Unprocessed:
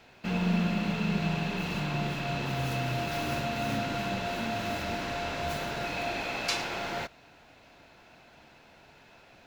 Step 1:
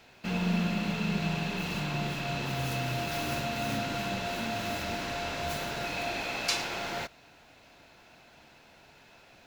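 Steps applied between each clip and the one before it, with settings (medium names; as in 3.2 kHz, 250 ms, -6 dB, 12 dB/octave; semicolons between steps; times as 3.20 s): treble shelf 4.1 kHz +6 dB; trim -1.5 dB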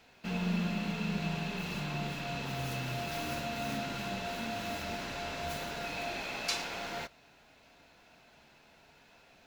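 flange 0.88 Hz, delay 4 ms, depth 1 ms, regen -66%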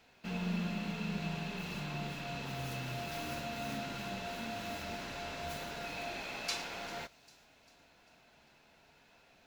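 feedback echo behind a high-pass 397 ms, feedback 49%, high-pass 4.7 kHz, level -16 dB; trim -3.5 dB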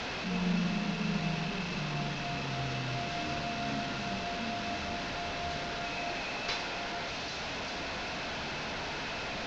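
one-bit delta coder 32 kbps, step -35 dBFS; distance through air 71 m; trim +5 dB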